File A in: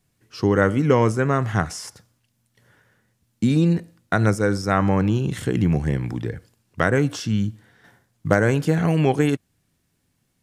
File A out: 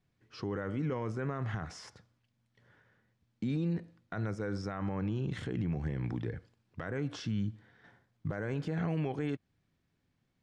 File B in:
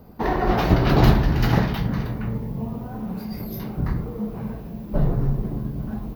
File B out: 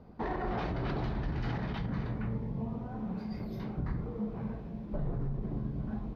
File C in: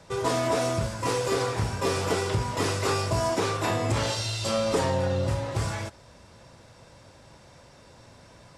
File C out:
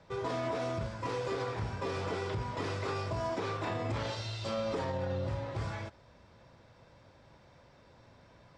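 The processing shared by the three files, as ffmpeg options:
ffmpeg -i in.wav -af "lowpass=3900,acompressor=threshold=-21dB:ratio=4,alimiter=limit=-19dB:level=0:latency=1:release=25,bandreject=frequency=2800:width=23,volume=-7dB" out.wav

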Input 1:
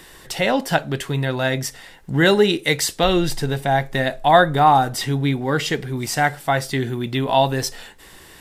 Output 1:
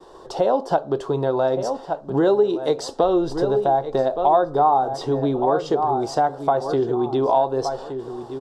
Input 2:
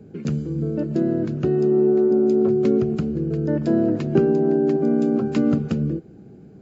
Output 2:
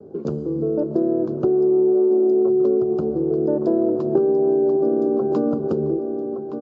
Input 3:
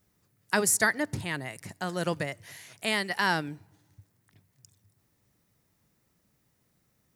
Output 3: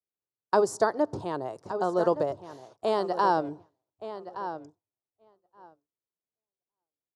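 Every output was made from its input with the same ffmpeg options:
ffmpeg -i in.wav -filter_complex "[0:a]firequalizer=gain_entry='entry(150,0);entry(250,4);entry(370,15);entry(1100,12);entry(2000,-16);entry(3300,-4);entry(5000,-1);entry(14000,-25)':delay=0.05:min_phase=1,asplit=2[link_01][link_02];[link_02]adelay=1168,lowpass=frequency=3500:poles=1,volume=-12dB,asplit=2[link_03][link_04];[link_04]adelay=1168,lowpass=frequency=3500:poles=1,volume=0.21,asplit=2[link_05][link_06];[link_06]adelay=1168,lowpass=frequency=3500:poles=1,volume=0.21[link_07];[link_03][link_05][link_07]amix=inputs=3:normalize=0[link_08];[link_01][link_08]amix=inputs=2:normalize=0,acompressor=threshold=-12dB:ratio=3,agate=range=-33dB:threshold=-36dB:ratio=3:detection=peak,volume=-5.5dB" out.wav

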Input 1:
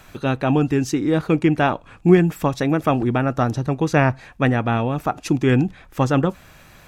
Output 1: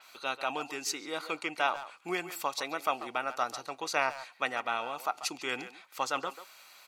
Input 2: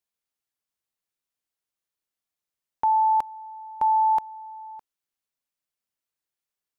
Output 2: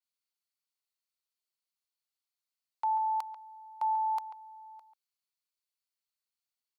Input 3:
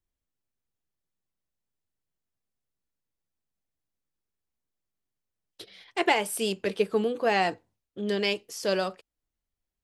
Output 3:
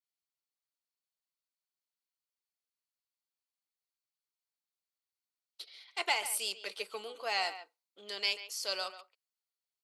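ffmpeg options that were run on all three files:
ffmpeg -i in.wav -filter_complex "[0:a]highpass=970,equalizer=frequency=4400:width=6:gain=9,bandreject=frequency=1700:width=5.2,asplit=2[link_01][link_02];[link_02]adelay=140,highpass=300,lowpass=3400,asoftclip=type=hard:threshold=-18.5dB,volume=-12dB[link_03];[link_01][link_03]amix=inputs=2:normalize=0,adynamicequalizer=threshold=0.00631:dfrequency=5700:dqfactor=0.7:tfrequency=5700:tqfactor=0.7:attack=5:release=100:ratio=0.375:range=2:mode=boostabove:tftype=highshelf,volume=-4.5dB" out.wav

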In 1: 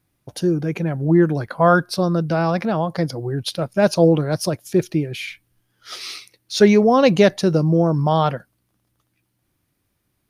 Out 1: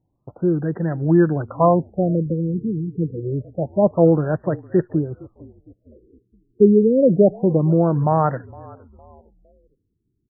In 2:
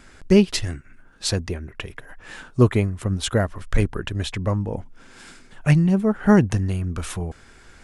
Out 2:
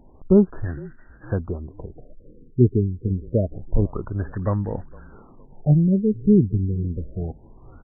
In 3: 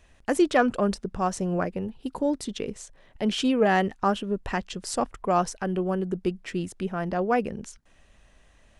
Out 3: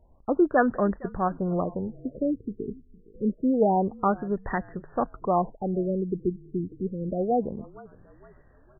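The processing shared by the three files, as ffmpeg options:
ffmpeg -i in.wav -filter_complex "[0:a]asplit=4[link_01][link_02][link_03][link_04];[link_02]adelay=460,afreqshift=-35,volume=-22.5dB[link_05];[link_03]adelay=920,afreqshift=-70,volume=-29.6dB[link_06];[link_04]adelay=1380,afreqshift=-105,volume=-36.8dB[link_07];[link_01][link_05][link_06][link_07]amix=inputs=4:normalize=0,afftfilt=real='re*lt(b*sr/1024,450*pow(2000/450,0.5+0.5*sin(2*PI*0.27*pts/sr)))':imag='im*lt(b*sr/1024,450*pow(2000/450,0.5+0.5*sin(2*PI*0.27*pts/sr)))':win_size=1024:overlap=0.75" out.wav

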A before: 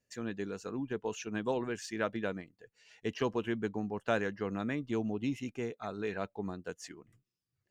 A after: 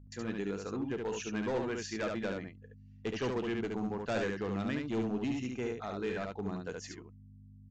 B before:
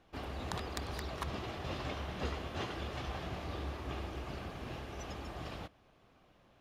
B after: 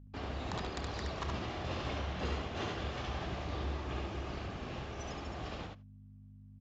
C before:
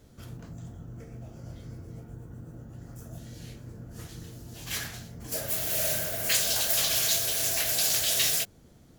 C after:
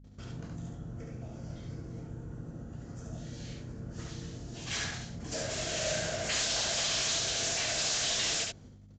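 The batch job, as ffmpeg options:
ffmpeg -i in.wav -af "agate=range=-27dB:threshold=-53dB:ratio=16:detection=peak,aeval=exprs='val(0)+0.00251*(sin(2*PI*50*n/s)+sin(2*PI*2*50*n/s)/2+sin(2*PI*3*50*n/s)/3+sin(2*PI*4*50*n/s)/4+sin(2*PI*5*50*n/s)/5)':channel_layout=same,aresample=16000,volume=30dB,asoftclip=hard,volume=-30dB,aresample=44100,aecho=1:1:32|71:0.158|0.668" out.wav

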